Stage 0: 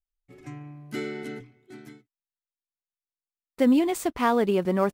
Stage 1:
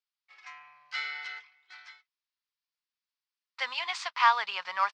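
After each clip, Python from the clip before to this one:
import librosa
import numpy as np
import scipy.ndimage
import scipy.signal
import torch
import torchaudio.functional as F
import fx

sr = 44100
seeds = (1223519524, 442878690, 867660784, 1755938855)

y = scipy.signal.sosfilt(scipy.signal.ellip(3, 1.0, 50, [970.0, 5000.0], 'bandpass', fs=sr, output='sos'), x)
y = fx.high_shelf(y, sr, hz=3900.0, db=6.5)
y = F.gain(torch.from_numpy(y), 4.5).numpy()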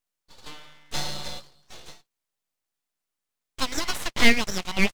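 y = np.abs(x)
y = F.gain(torch.from_numpy(y), 8.0).numpy()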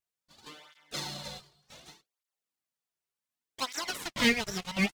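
y = fx.flanger_cancel(x, sr, hz=0.67, depth_ms=4.0)
y = F.gain(torch.from_numpy(y), -2.5).numpy()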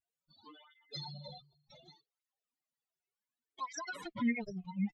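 y = fx.spec_expand(x, sr, power=4.0)
y = F.gain(torch.from_numpy(y), -5.5).numpy()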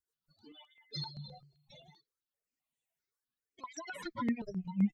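y = fx.rotary_switch(x, sr, hz=6.3, then_hz=0.8, switch_at_s=0.49)
y = fx.phaser_held(y, sr, hz=7.7, low_hz=710.0, high_hz=4900.0)
y = F.gain(torch.from_numpy(y), 6.5).numpy()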